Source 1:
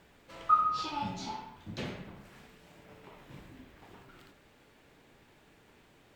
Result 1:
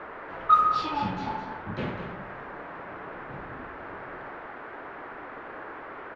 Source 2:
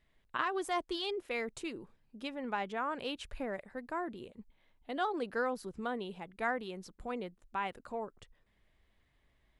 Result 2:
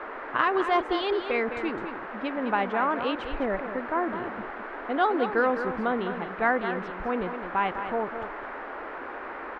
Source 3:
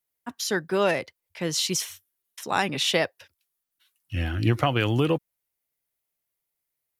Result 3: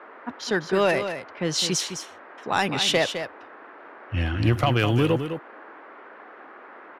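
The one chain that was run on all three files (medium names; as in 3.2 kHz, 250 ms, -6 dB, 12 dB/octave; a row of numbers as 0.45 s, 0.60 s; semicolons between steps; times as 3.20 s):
level-controlled noise filter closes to 1.5 kHz, open at -19.5 dBFS; band noise 270–1700 Hz -48 dBFS; saturation -12.5 dBFS; on a send: delay 208 ms -9 dB; on the sum: peak normalisation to -9 dBFS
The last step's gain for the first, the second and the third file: +6.5 dB, +10.0 dB, +2.5 dB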